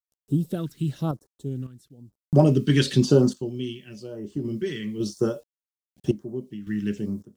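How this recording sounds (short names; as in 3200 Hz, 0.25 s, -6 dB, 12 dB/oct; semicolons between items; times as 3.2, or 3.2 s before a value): a quantiser's noise floor 10-bit, dither none; random-step tremolo 1.8 Hz, depth 90%; phasing stages 2, 1 Hz, lowest notch 660–2500 Hz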